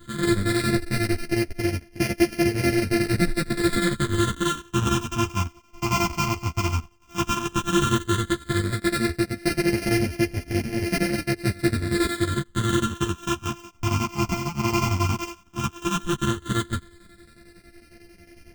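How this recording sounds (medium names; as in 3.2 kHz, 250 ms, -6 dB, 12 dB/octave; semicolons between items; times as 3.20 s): a buzz of ramps at a fixed pitch in blocks of 128 samples; phasing stages 8, 0.12 Hz, lowest notch 510–1100 Hz; chopped level 11 Hz, depth 60%, duty 65%; a shimmering, thickened sound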